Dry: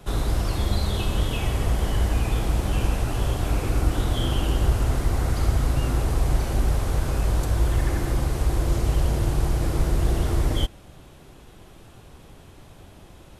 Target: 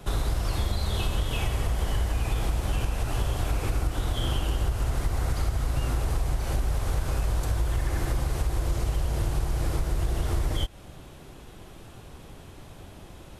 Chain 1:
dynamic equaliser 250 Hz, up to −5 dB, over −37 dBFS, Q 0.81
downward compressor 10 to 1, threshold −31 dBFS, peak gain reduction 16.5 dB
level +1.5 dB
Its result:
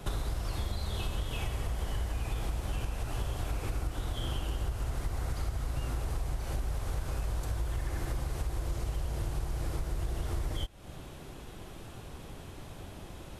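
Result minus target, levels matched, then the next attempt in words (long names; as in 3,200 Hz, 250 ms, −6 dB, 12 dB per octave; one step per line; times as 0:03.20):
downward compressor: peak gain reduction +7 dB
dynamic equaliser 250 Hz, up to −5 dB, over −37 dBFS, Q 0.81
downward compressor 10 to 1, threshold −23 dBFS, peak gain reduction 9 dB
level +1.5 dB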